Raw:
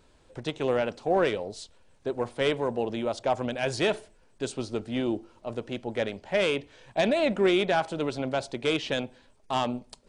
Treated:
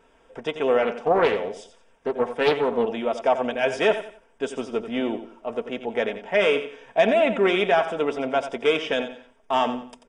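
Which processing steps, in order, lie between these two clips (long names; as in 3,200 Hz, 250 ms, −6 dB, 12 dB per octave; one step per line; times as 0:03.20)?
Butterworth band-reject 4,200 Hz, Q 3.6
bass and treble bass −12 dB, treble −11 dB
comb filter 4.4 ms, depth 48%
repeating echo 89 ms, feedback 32%, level −11 dB
0:00.82–0:02.87: highs frequency-modulated by the lows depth 0.32 ms
level +5.5 dB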